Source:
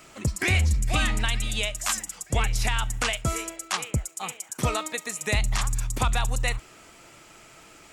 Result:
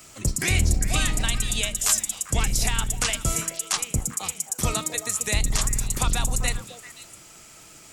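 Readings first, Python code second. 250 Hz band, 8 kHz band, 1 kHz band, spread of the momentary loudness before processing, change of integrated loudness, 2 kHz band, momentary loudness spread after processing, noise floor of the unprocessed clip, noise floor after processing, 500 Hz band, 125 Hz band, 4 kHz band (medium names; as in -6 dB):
+1.5 dB, +7.5 dB, -2.0 dB, 7 LU, +2.5 dB, -1.5 dB, 6 LU, -51 dBFS, -48 dBFS, -1.5 dB, 0.0 dB, +2.0 dB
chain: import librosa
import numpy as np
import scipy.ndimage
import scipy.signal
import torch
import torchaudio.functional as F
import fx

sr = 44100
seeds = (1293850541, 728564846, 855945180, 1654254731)

y = fx.octave_divider(x, sr, octaves=1, level_db=0.0)
y = fx.bass_treble(y, sr, bass_db=1, treble_db=11)
y = fx.echo_stepped(y, sr, ms=131, hz=210.0, octaves=1.4, feedback_pct=70, wet_db=-4.5)
y = y * 10.0 ** (-2.5 / 20.0)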